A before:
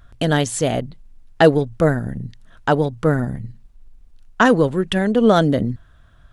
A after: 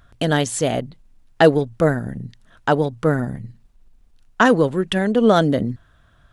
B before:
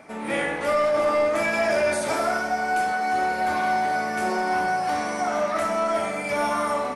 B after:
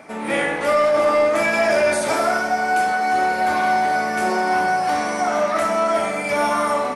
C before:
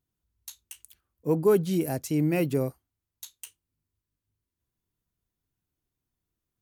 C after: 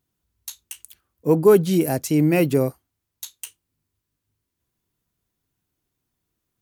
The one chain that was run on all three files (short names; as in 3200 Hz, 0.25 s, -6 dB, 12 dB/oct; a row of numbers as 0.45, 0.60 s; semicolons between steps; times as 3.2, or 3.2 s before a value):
low shelf 80 Hz -8 dB; match loudness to -19 LUFS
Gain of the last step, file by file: 0.0, +5.0, +8.0 dB